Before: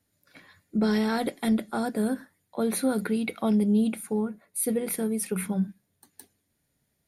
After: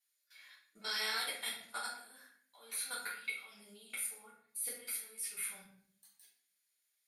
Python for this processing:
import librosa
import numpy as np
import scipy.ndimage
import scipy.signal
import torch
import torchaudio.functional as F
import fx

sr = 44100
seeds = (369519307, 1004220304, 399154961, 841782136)

y = scipy.signal.sosfilt(scipy.signal.bessel(2, 2800.0, 'highpass', norm='mag', fs=sr, output='sos'), x)
y = fx.level_steps(y, sr, step_db=22)
y = fx.room_shoebox(y, sr, seeds[0], volume_m3=100.0, walls='mixed', distance_m=1.9)